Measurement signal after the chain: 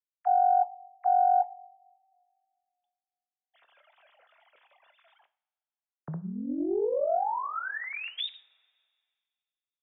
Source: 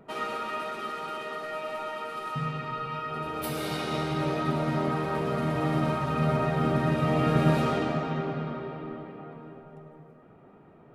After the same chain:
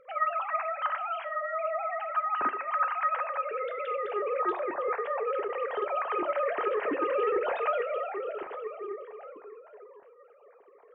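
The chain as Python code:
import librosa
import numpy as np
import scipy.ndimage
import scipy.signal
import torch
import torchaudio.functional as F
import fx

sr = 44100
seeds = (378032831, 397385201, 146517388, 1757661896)

y = fx.sine_speech(x, sr)
y = fx.rev_double_slope(y, sr, seeds[0], early_s=0.43, late_s=2.1, knee_db=-22, drr_db=10.5)
y = fx.doppler_dist(y, sr, depth_ms=0.11)
y = y * librosa.db_to_amplitude(-2.5)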